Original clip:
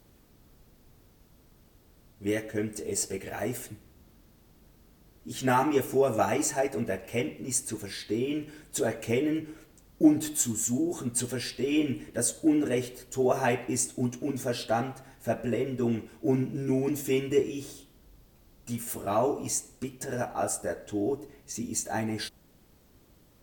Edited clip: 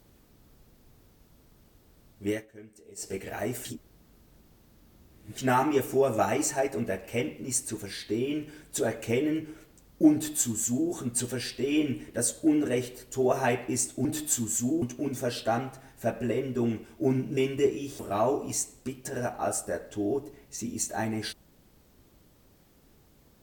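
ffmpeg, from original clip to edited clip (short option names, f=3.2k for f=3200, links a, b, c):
-filter_complex "[0:a]asplit=9[a][b][c][d][e][f][g][h][i];[a]atrim=end=2.46,asetpts=PTS-STARTPTS,afade=t=out:st=2.29:d=0.17:silence=0.133352[j];[b]atrim=start=2.46:end=2.96,asetpts=PTS-STARTPTS,volume=-17.5dB[k];[c]atrim=start=2.96:end=3.652,asetpts=PTS-STARTPTS,afade=t=in:d=0.17:silence=0.133352[l];[d]atrim=start=3.648:end=5.382,asetpts=PTS-STARTPTS,areverse[m];[e]atrim=start=5.378:end=14.052[n];[f]atrim=start=10.128:end=10.902[o];[g]atrim=start=14.048:end=16.602[p];[h]atrim=start=17.098:end=17.722[q];[i]atrim=start=18.948[r];[j][k][l]concat=n=3:v=0:a=1[s];[s][m]acrossfade=d=0.004:c1=hsin:c2=hsin[t];[t][n]acrossfade=d=0.004:c1=hsin:c2=hsin[u];[u][o]acrossfade=d=0.004:c1=hsin:c2=hsin[v];[v][p]acrossfade=d=0.004:c1=hsin:c2=hsin[w];[w][q]acrossfade=d=0.004:c1=hsin:c2=hsin[x];[x][r]acrossfade=d=0.004:c1=hsin:c2=hsin"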